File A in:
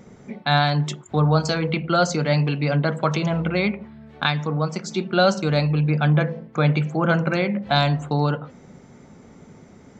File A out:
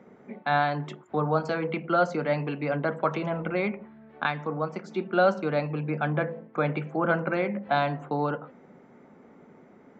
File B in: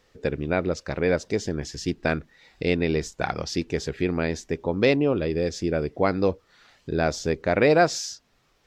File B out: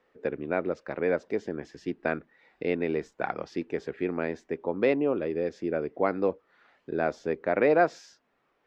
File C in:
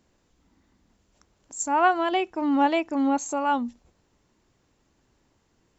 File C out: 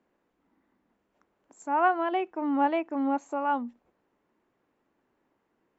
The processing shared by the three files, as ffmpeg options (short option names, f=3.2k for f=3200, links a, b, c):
-filter_complex "[0:a]acrossover=split=200 2500:gain=0.126 1 0.1[a][b][c];[a][b][c]amix=inputs=3:normalize=0,volume=-3dB"